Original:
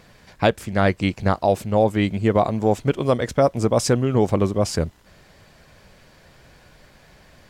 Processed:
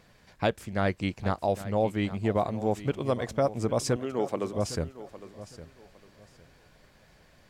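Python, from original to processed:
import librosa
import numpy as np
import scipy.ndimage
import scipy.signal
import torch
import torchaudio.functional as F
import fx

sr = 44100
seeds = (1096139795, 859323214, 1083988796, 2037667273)

y = fx.highpass(x, sr, hz=290.0, slope=12, at=(3.96, 4.54))
y = fx.echo_feedback(y, sr, ms=808, feedback_pct=25, wet_db=-15)
y = y * librosa.db_to_amplitude(-8.5)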